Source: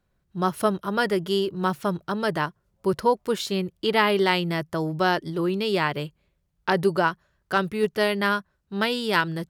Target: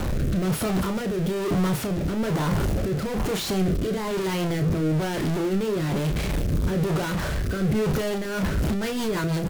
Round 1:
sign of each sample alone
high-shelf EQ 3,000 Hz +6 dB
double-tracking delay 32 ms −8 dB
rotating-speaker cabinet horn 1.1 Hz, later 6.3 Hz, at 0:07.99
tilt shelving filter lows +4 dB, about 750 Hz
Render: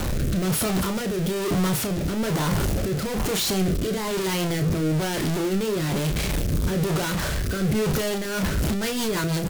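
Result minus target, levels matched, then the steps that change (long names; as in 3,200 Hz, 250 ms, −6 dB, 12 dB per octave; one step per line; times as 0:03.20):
8,000 Hz band +6.0 dB
change: high-shelf EQ 3,000 Hz −2 dB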